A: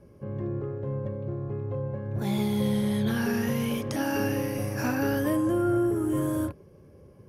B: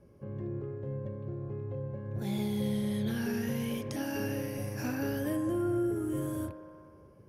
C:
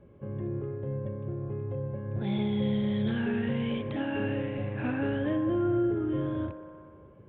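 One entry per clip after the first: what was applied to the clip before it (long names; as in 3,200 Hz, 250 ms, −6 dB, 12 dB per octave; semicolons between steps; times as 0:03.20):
delay with a band-pass on its return 61 ms, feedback 78%, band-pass 1,000 Hz, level −11 dB; dynamic equaliser 1,100 Hz, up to −7 dB, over −48 dBFS, Q 1.3; level −5.5 dB
downsampling to 8,000 Hz; level +3.5 dB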